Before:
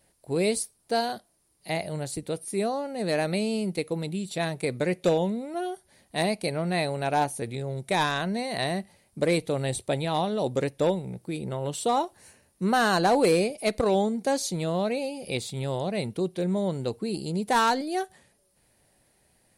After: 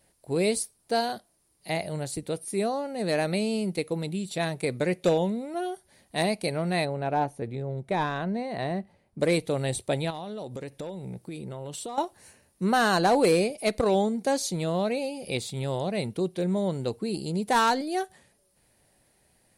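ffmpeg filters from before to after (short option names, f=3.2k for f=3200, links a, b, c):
-filter_complex "[0:a]asplit=3[a][b][c];[a]afade=t=out:st=6.84:d=0.02[d];[b]lowpass=f=1.1k:p=1,afade=t=in:st=6.84:d=0.02,afade=t=out:st=9.19:d=0.02[e];[c]afade=t=in:st=9.19:d=0.02[f];[d][e][f]amix=inputs=3:normalize=0,asettb=1/sr,asplit=3[g][h][i];[g]atrim=end=10.104[j];[h]atrim=start=10.1:end=11.98,asetpts=PTS-STARTPTS,afade=t=in:d=0.004:c=qsin,afade=t=out:st=1.876:d=0.004:c=qsin,acompressor=threshold=-33dB:ratio=8:attack=3.2:release=140:knee=1:detection=peak[k];[i]atrim=start=11.976[l];[j][k]acrossfade=d=0.004:c1=hsin:c2=qsin[m];[m][l]acrossfade=d=0.004:c1=qsin:c2=hsin"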